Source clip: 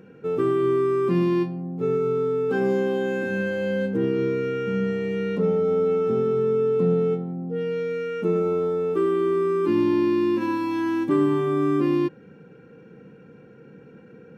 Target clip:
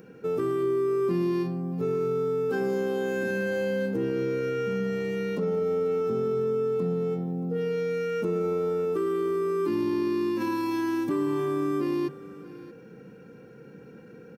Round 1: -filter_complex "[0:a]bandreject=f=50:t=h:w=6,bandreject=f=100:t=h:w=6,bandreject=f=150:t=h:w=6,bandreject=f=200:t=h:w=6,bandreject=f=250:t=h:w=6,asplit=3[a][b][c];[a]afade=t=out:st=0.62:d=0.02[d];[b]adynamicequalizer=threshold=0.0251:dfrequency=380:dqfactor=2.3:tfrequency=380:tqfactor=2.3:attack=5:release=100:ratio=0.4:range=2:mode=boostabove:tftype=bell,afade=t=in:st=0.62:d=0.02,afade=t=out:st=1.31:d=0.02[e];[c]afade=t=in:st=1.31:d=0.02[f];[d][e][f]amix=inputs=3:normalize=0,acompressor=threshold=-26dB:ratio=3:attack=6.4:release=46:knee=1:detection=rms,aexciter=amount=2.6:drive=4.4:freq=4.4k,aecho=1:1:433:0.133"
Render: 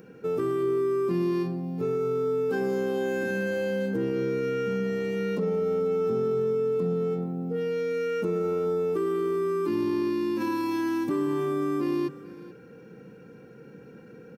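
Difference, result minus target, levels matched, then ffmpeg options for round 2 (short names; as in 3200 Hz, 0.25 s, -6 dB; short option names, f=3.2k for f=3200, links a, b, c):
echo 0.197 s early
-filter_complex "[0:a]bandreject=f=50:t=h:w=6,bandreject=f=100:t=h:w=6,bandreject=f=150:t=h:w=6,bandreject=f=200:t=h:w=6,bandreject=f=250:t=h:w=6,asplit=3[a][b][c];[a]afade=t=out:st=0.62:d=0.02[d];[b]adynamicequalizer=threshold=0.0251:dfrequency=380:dqfactor=2.3:tfrequency=380:tqfactor=2.3:attack=5:release=100:ratio=0.4:range=2:mode=boostabove:tftype=bell,afade=t=in:st=0.62:d=0.02,afade=t=out:st=1.31:d=0.02[e];[c]afade=t=in:st=1.31:d=0.02[f];[d][e][f]amix=inputs=3:normalize=0,acompressor=threshold=-26dB:ratio=3:attack=6.4:release=46:knee=1:detection=rms,aexciter=amount=2.6:drive=4.4:freq=4.4k,aecho=1:1:630:0.133"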